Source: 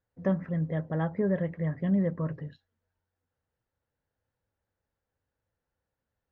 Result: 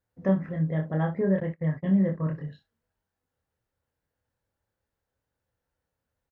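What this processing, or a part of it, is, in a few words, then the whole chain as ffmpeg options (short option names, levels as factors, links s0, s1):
slapback doubling: -filter_complex "[0:a]asplit=3[s0][s1][s2];[s1]adelay=26,volume=0.668[s3];[s2]adelay=62,volume=0.266[s4];[s0][s3][s4]amix=inputs=3:normalize=0,asettb=1/sr,asplit=3[s5][s6][s7];[s5]atrim=end=1.404[s8];[s6]atrim=start=1.4:end=2.32,asetpts=PTS-STARTPTS,afade=t=in:d=0.004:c=qsin,afade=t=out:st=0.916:d=0.004:c=qsin,agate=range=0.0355:threshold=0.0282:ratio=16:detection=peak[s9];[s7]atrim=start=2.316[s10];[s8][s9]acrossfade=d=0.004:c1=hsin:c2=qsin[s11];[s11][s10]acrossfade=d=0.004:c1=qsin:c2=hsin"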